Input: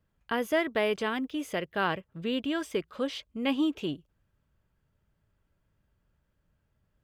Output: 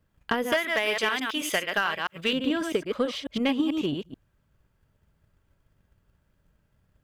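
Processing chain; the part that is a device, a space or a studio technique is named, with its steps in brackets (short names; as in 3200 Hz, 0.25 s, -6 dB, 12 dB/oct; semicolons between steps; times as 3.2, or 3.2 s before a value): reverse delay 0.109 s, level -5.5 dB; 0.52–2.33 tilt shelf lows -9.5 dB, about 660 Hz; drum-bus smash (transient shaper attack +7 dB, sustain 0 dB; compressor 6:1, threshold -24 dBFS, peak gain reduction 9.5 dB; soft clip -17.5 dBFS, distortion -19 dB); gain +4 dB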